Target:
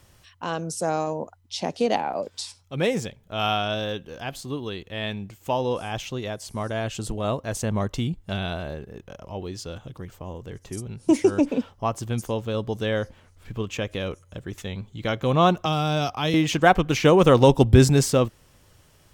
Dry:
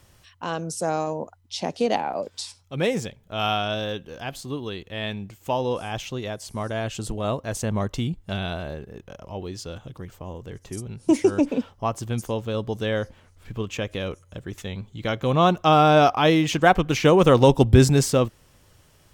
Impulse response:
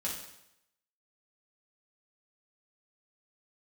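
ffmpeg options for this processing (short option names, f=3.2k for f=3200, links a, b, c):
-filter_complex "[0:a]asettb=1/sr,asplit=3[a][b][c];[a]atrim=end=15.654[d];[b]atrim=start=15.65:end=16.34,asetpts=PTS-STARTPTS,afade=t=in:d=0.004:c=qsin,afade=t=out:st=0.686:d=0.004:c=qsin,acrossover=split=180|3000[e][f][g];[f]acompressor=threshold=-29dB:ratio=2.5[h];[e][h][g]amix=inputs=3:normalize=0[i];[c]atrim=start=16.336[j];[d][i]acrossfade=d=0.004:c1=hsin:c2=qsin[k];[k][j]acrossfade=d=0.004:c1=qsin:c2=hsin"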